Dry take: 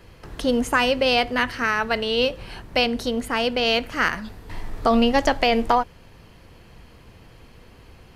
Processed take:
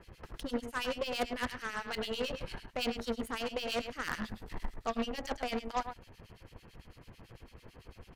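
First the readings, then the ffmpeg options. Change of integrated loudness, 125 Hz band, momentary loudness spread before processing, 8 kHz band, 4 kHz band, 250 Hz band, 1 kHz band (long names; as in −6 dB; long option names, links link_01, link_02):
−15.5 dB, −11.0 dB, 15 LU, −10.0 dB, −15.5 dB, −15.0 dB, −15.5 dB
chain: -filter_complex "[0:a]areverse,acompressor=threshold=-29dB:ratio=6,areverse,aecho=1:1:104:0.398,acrossover=split=2000[link_01][link_02];[link_01]aeval=exprs='val(0)*(1-1/2+1/2*cos(2*PI*9*n/s))':channel_layout=same[link_03];[link_02]aeval=exprs='val(0)*(1-1/2-1/2*cos(2*PI*9*n/s))':channel_layout=same[link_04];[link_03][link_04]amix=inputs=2:normalize=0,aeval=exprs='0.0841*(cos(1*acos(clip(val(0)/0.0841,-1,1)))-cos(1*PI/2))+0.015*(cos(6*acos(clip(val(0)/0.0841,-1,1)))-cos(6*PI/2))+0.00335*(cos(7*acos(clip(val(0)/0.0841,-1,1)))-cos(7*PI/2))+0.015*(cos(8*acos(clip(val(0)/0.0841,-1,1)))-cos(8*PI/2))':channel_layout=same"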